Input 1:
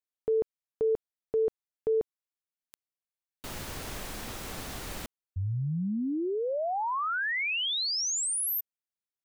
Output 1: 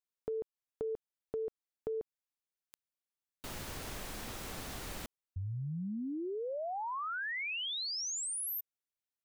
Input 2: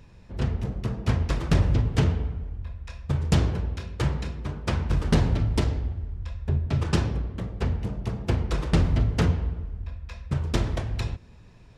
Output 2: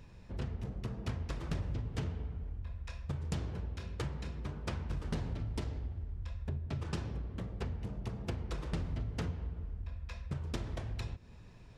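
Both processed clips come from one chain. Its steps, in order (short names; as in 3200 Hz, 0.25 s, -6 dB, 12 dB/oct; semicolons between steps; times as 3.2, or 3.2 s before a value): compressor 3:1, threshold -34 dBFS; gain -3.5 dB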